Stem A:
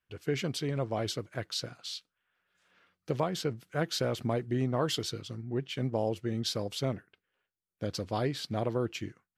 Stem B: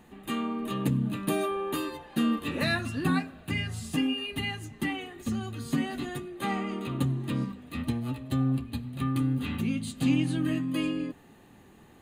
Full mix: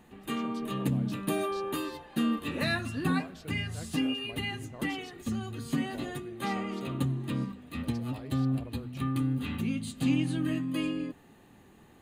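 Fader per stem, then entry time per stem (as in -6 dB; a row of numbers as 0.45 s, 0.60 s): -16.0 dB, -2.0 dB; 0.00 s, 0.00 s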